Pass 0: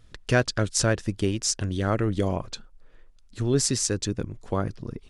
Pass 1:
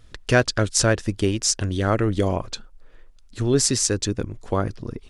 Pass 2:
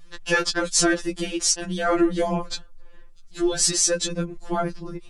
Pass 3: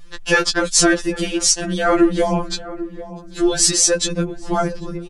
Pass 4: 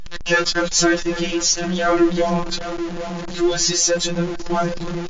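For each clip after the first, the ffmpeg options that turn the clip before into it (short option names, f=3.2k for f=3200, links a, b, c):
-af "equalizer=f=160:t=o:w=0.81:g=-4,volume=4.5dB"
-af "afftfilt=real='re*2.83*eq(mod(b,8),0)':imag='im*2.83*eq(mod(b,8),0)':win_size=2048:overlap=0.75,volume=3.5dB"
-filter_complex "[0:a]asplit=2[a][b];[b]adelay=794,lowpass=f=860:p=1,volume=-13.5dB,asplit=2[c][d];[d]adelay=794,lowpass=f=860:p=1,volume=0.46,asplit=2[e][f];[f]adelay=794,lowpass=f=860:p=1,volume=0.46,asplit=2[g][h];[h]adelay=794,lowpass=f=860:p=1,volume=0.46[i];[a][c][e][g][i]amix=inputs=5:normalize=0,volume=5.5dB"
-af "aeval=exprs='val(0)+0.5*0.0841*sgn(val(0))':c=same,volume=-2.5dB" -ar 16000 -c:a libmp3lame -b:a 56k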